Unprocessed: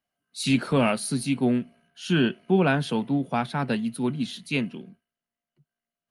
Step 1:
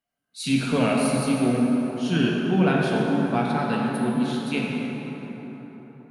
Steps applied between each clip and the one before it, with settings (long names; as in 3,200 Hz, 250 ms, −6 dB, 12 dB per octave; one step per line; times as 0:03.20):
dense smooth reverb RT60 4.6 s, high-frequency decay 0.45×, DRR −3 dB
level −3 dB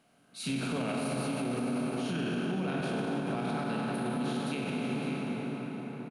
compressor on every frequency bin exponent 0.6
single-tap delay 558 ms −11.5 dB
brickwall limiter −15.5 dBFS, peak gain reduction 10 dB
level −9 dB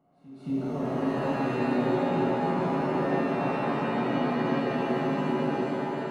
Savitzky-Golay smoothing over 65 samples
backwards echo 224 ms −17.5 dB
reverb with rising layers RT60 2.5 s, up +7 semitones, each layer −2 dB, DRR −3 dB
level −1 dB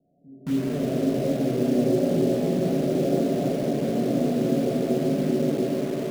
Butterworth low-pass 680 Hz 72 dB per octave
in parallel at −3 dB: bit-depth reduction 6 bits, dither none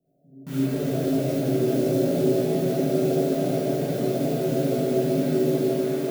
high-shelf EQ 11,000 Hz +11 dB
reverb whose tail is shaped and stops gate 90 ms rising, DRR −6 dB
level −6.5 dB